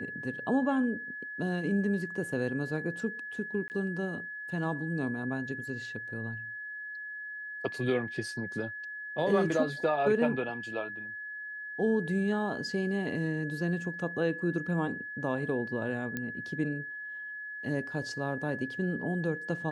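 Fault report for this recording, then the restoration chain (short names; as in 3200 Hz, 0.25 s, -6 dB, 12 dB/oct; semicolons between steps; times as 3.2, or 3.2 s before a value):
tone 1700 Hz -38 dBFS
3.68–3.7 gap 19 ms
16.17 pop -20 dBFS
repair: de-click; notch 1700 Hz, Q 30; interpolate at 3.68, 19 ms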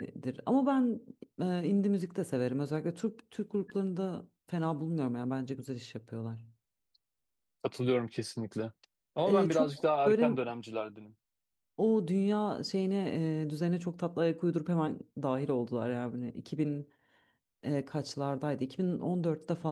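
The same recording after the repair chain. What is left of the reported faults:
none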